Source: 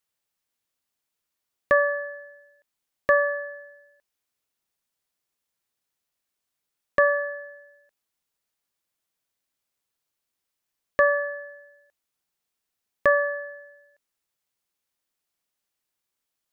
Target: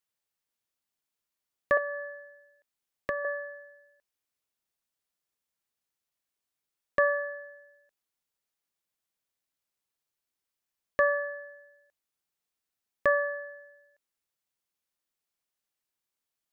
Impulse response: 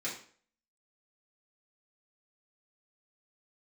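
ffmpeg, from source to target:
-filter_complex "[0:a]asettb=1/sr,asplit=3[a][b][c];[a]atrim=end=1.774[d];[b]atrim=start=1.77:end=3.25,asetpts=PTS-STARTPTS,afade=t=in:d=0.004:c=qsin,afade=t=out:st=1.476:d=0.004:c=qsin,acrossover=split=280[e][f];[f]acompressor=threshold=-25dB:ratio=5[g];[e][g]amix=inputs=2:normalize=0[h];[c]atrim=start=3.246[i];[d][h]acrossfade=d=0.004:c1=hsin:c2=qsin[j];[j][i]acrossfade=d=0.004:c1=qsin:c2=hsin,volume=-5dB"

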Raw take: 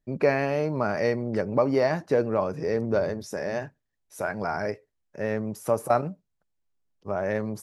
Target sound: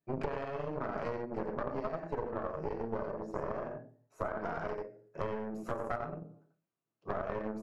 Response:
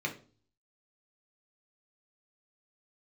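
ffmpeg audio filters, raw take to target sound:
-filter_complex "[0:a]highpass=f=130:p=1,bass=f=250:g=-3,treble=f=4k:g=-2,aecho=1:1:88:0.631[a];[1:a]atrim=start_sample=2205,asetrate=48510,aresample=44100[b];[a][b]afir=irnorm=-1:irlink=0,acompressor=threshold=-32dB:ratio=16,aeval=exprs='0.0891*(cos(1*acos(clip(val(0)/0.0891,-1,1)))-cos(1*PI/2))+0.0447*(cos(2*acos(clip(val(0)/0.0891,-1,1)))-cos(2*PI/2))+0.0282*(cos(6*acos(clip(val(0)/0.0891,-1,1)))-cos(6*PI/2))+0.0178*(cos(8*acos(clip(val(0)/0.0891,-1,1)))-cos(8*PI/2))':c=same,asetnsamples=n=441:p=0,asendcmd='3.11 highshelf g -13.5;4.41 highshelf g -6',highshelf=f=1.9k:t=q:w=1.5:g=-6.5,volume=-3.5dB"

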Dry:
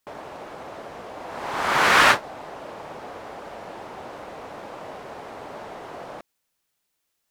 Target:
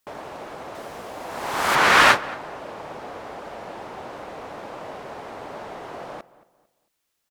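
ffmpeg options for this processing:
-filter_complex "[0:a]asetnsamples=n=441:p=0,asendcmd='0.75 highshelf g 11.5;1.75 highshelf g -2',highshelf=f=6.9k:g=2.5,asplit=2[a][b];[b]adelay=224,lowpass=f=2k:p=1,volume=-18dB,asplit=2[c][d];[d]adelay=224,lowpass=f=2k:p=1,volume=0.35,asplit=2[e][f];[f]adelay=224,lowpass=f=2k:p=1,volume=0.35[g];[a][c][e][g]amix=inputs=4:normalize=0,volume=1.5dB"

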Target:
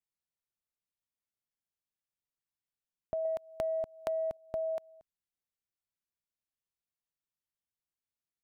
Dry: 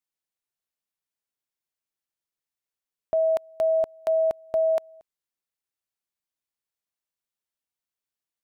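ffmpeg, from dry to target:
-filter_complex "[0:a]asettb=1/sr,asplit=3[a][b][c];[a]atrim=end=3.254[d];[b]atrim=start=3.25:end=4.37,asetpts=PTS-STARTPTS,afade=t=in:d=0.004:c=qsin,afade=t=out:st=1.116:d=0.004:c=qsin,acontrast=49[e];[c]atrim=start=4.366[f];[d][e]acrossfade=d=0.004:c1=hsin:c2=qsin[g];[g][f]acrossfade=d=0.004:c1=qsin:c2=hsin,bass=f=250:g=9,treble=f=4k:g=-1,acompressor=threshold=-24dB:ratio=6,volume=-8dB"

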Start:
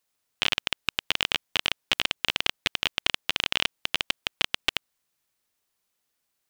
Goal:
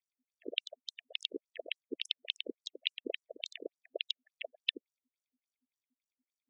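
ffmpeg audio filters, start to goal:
-filter_complex "[0:a]agate=range=-33dB:threshold=-21dB:ratio=3:detection=peak,equalizer=f=3.7k:w=6.7:g=6.5,areverse,acompressor=threshold=-33dB:ratio=8,areverse,aeval=exprs='val(0)+0.000224*(sin(2*PI*50*n/s)+sin(2*PI*2*50*n/s)/2+sin(2*PI*3*50*n/s)/3+sin(2*PI*4*50*n/s)/4+sin(2*PI*5*50*n/s)/5)':c=same,asplit=2[a][b];[b]acrusher=samples=38:mix=1:aa=0.000001,volume=-3.5dB[c];[a][c]amix=inputs=2:normalize=0,asuperstop=centerf=1100:order=20:qfactor=1,afftfilt=real='re*between(b*sr/1024,340*pow(7900/340,0.5+0.5*sin(2*PI*3.5*pts/sr))/1.41,340*pow(7900/340,0.5+0.5*sin(2*PI*3.5*pts/sr))*1.41)':imag='im*between(b*sr/1024,340*pow(7900/340,0.5+0.5*sin(2*PI*3.5*pts/sr))/1.41,340*pow(7900/340,0.5+0.5*sin(2*PI*3.5*pts/sr))*1.41)':win_size=1024:overlap=0.75,volume=7dB"

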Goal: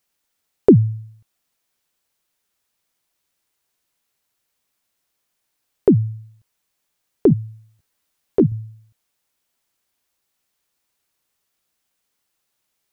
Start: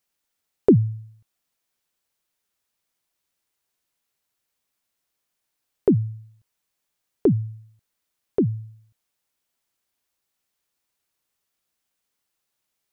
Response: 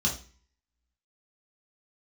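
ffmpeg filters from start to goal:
-filter_complex "[0:a]asettb=1/sr,asplit=3[a][b][c];[a]atrim=end=7.294[d];[b]atrim=start=7.29:end=8.52,asetpts=PTS-STARTPTS,afade=t=in:d=0.004:c=qsin,afade=t=out:st=1.226:d=0.004:c=qsin,asplit=2[e][f];[f]adelay=13,volume=-5dB[g];[e][g]amix=inputs=2:normalize=0,atrim=end_sample=54243[h];[c]atrim=start=8.516[i];[d][h]acrossfade=d=0.004:c1=hsin:c2=qsin[j];[j][i]acrossfade=d=0.004:c1=qsin:c2=hsin,volume=4.5dB"

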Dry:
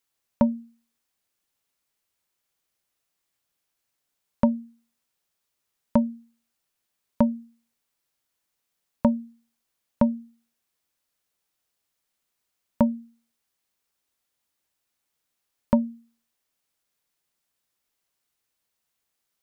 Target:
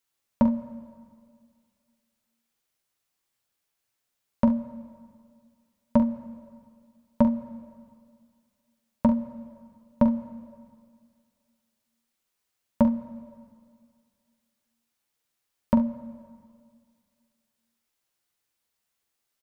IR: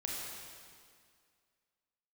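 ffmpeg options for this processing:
-filter_complex "[0:a]asplit=2[a][b];[1:a]atrim=start_sample=2205[c];[b][c]afir=irnorm=-1:irlink=0,volume=-13.5dB[d];[a][d]amix=inputs=2:normalize=0,flanger=delay=8.3:depth=1.4:regen=-41:speed=1.5:shape=sinusoidal,asplit=2[e][f];[f]aecho=0:1:44|69:0.335|0.168[g];[e][g]amix=inputs=2:normalize=0,volume=1.5dB"

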